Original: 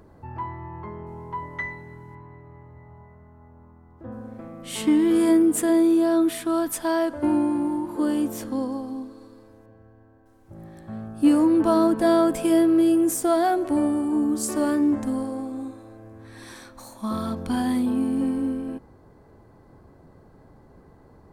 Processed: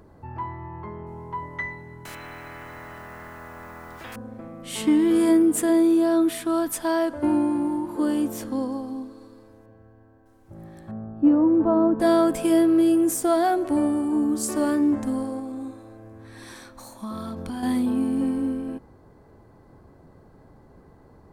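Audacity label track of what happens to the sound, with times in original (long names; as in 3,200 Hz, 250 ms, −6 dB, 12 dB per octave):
2.050000	4.160000	every bin compressed towards the loudest bin 10 to 1
10.910000	12.000000	low-pass filter 1,000 Hz
15.390000	17.630000	downward compressor, threshold −29 dBFS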